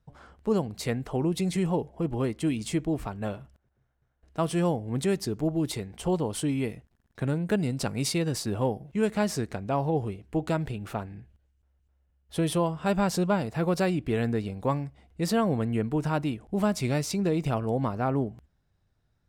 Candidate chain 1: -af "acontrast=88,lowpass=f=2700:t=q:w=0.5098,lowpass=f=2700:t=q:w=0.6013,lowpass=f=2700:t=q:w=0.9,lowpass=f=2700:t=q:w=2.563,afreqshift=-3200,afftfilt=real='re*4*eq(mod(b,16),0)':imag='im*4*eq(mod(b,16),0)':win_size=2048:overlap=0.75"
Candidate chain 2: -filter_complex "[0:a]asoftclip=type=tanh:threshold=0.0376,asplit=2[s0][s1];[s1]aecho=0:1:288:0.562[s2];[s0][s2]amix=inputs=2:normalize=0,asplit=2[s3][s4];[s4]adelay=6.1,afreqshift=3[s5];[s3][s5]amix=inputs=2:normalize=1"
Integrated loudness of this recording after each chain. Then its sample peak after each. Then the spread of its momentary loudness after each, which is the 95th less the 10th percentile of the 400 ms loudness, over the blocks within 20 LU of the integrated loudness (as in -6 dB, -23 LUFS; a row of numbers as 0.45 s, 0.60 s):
-20.5 LUFS, -36.0 LUFS; -4.0 dBFS, -21.5 dBFS; 15 LU, 7 LU